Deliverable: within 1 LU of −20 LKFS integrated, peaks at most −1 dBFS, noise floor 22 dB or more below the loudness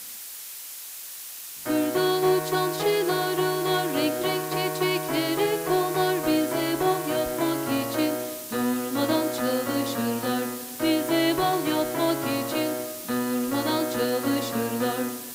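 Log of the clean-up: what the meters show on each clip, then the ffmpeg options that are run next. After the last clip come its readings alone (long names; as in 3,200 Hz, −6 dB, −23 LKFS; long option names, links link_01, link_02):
background noise floor −39 dBFS; target noise floor −47 dBFS; integrated loudness −25.0 LKFS; sample peak −12.0 dBFS; target loudness −20.0 LKFS
→ -af "afftdn=noise_reduction=8:noise_floor=-39"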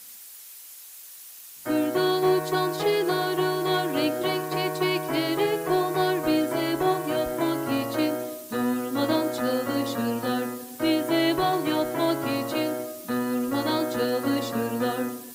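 background noise floor −45 dBFS; target noise floor −48 dBFS
→ -af "afftdn=noise_reduction=6:noise_floor=-45"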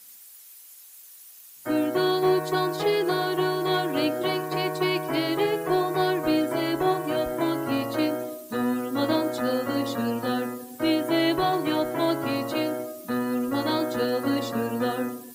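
background noise floor −48 dBFS; integrated loudness −25.5 LKFS; sample peak −12.5 dBFS; target loudness −20.0 LKFS
→ -af "volume=5.5dB"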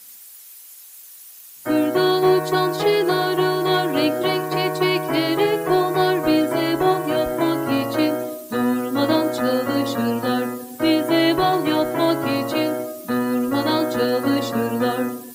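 integrated loudness −20.0 LKFS; sample peak −7.0 dBFS; background noise floor −43 dBFS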